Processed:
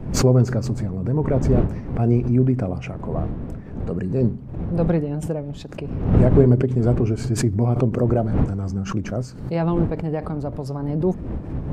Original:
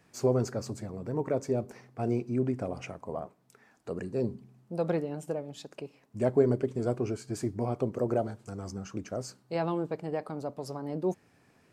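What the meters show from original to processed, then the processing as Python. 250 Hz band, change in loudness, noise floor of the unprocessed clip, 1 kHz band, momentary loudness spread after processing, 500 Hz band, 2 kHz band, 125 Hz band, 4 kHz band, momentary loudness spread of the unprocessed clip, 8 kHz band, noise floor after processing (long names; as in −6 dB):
+12.0 dB, +11.0 dB, −65 dBFS, +6.5 dB, 12 LU, +7.0 dB, +8.5 dB, +16.5 dB, can't be measured, 12 LU, +11.0 dB, −34 dBFS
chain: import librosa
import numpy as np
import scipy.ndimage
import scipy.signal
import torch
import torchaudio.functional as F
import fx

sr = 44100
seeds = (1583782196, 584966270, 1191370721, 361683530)

y = fx.dmg_wind(x, sr, seeds[0], corner_hz=340.0, level_db=-41.0)
y = fx.bass_treble(y, sr, bass_db=11, treble_db=-7)
y = fx.pre_swell(y, sr, db_per_s=83.0)
y = y * 10.0 ** (5.0 / 20.0)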